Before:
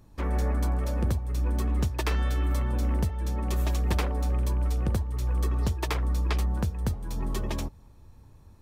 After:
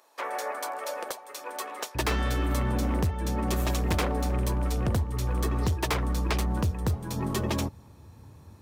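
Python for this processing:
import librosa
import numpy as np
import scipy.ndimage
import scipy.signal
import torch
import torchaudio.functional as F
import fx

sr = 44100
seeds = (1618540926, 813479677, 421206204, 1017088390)

y = fx.highpass(x, sr, hz=fx.steps((0.0, 540.0), (1.95, 76.0)), slope=24)
y = np.clip(y, -10.0 ** (-27.5 / 20.0), 10.0 ** (-27.5 / 20.0))
y = F.gain(torch.from_numpy(y), 6.0).numpy()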